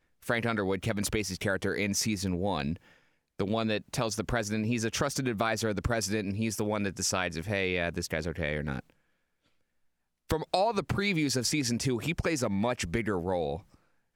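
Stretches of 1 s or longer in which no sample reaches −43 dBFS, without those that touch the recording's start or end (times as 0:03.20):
0:08.90–0:10.30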